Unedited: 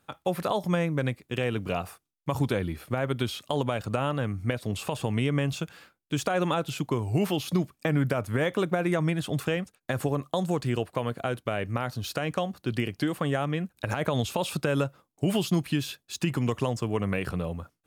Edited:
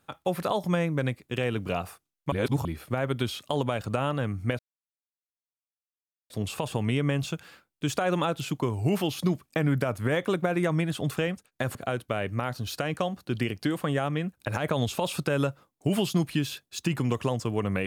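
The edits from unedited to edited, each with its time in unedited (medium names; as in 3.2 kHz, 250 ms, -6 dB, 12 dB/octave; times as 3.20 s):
2.32–2.65 s: reverse
4.59 s: insert silence 1.71 s
10.04–11.12 s: delete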